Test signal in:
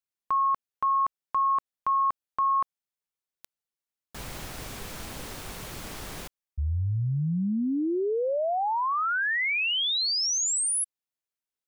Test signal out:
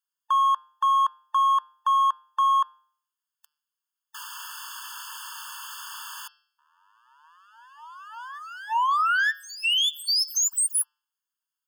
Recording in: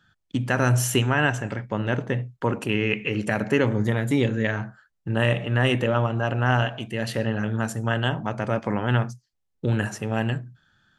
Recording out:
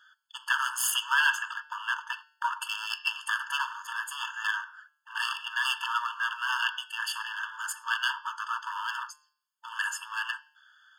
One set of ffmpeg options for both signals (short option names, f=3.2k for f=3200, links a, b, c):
-af "aeval=exprs='clip(val(0),-1,0.0398)':c=same,bandreject=f=150:t=h:w=4,bandreject=f=300:t=h:w=4,bandreject=f=450:t=h:w=4,bandreject=f=600:t=h:w=4,bandreject=f=750:t=h:w=4,bandreject=f=900:t=h:w=4,bandreject=f=1.05k:t=h:w=4,bandreject=f=1.2k:t=h:w=4,bandreject=f=1.35k:t=h:w=4,bandreject=f=1.5k:t=h:w=4,bandreject=f=1.65k:t=h:w=4,bandreject=f=1.8k:t=h:w=4,bandreject=f=1.95k:t=h:w=4,bandreject=f=2.1k:t=h:w=4,bandreject=f=2.25k:t=h:w=4,bandreject=f=2.4k:t=h:w=4,bandreject=f=2.55k:t=h:w=4,bandreject=f=2.7k:t=h:w=4,bandreject=f=2.85k:t=h:w=4,bandreject=f=3k:t=h:w=4,bandreject=f=3.15k:t=h:w=4,bandreject=f=3.3k:t=h:w=4,bandreject=f=3.45k:t=h:w=4,bandreject=f=3.6k:t=h:w=4,bandreject=f=3.75k:t=h:w=4,bandreject=f=3.9k:t=h:w=4,bandreject=f=4.05k:t=h:w=4,bandreject=f=4.2k:t=h:w=4,bandreject=f=4.35k:t=h:w=4,bandreject=f=4.5k:t=h:w=4,bandreject=f=4.65k:t=h:w=4,bandreject=f=4.8k:t=h:w=4,bandreject=f=4.95k:t=h:w=4,bandreject=f=5.1k:t=h:w=4,bandreject=f=5.25k:t=h:w=4,bandreject=f=5.4k:t=h:w=4,bandreject=f=5.55k:t=h:w=4,afftfilt=real='re*eq(mod(floor(b*sr/1024/890),2),1)':imag='im*eq(mod(floor(b*sr/1024/890),2),1)':win_size=1024:overlap=0.75,volume=6dB"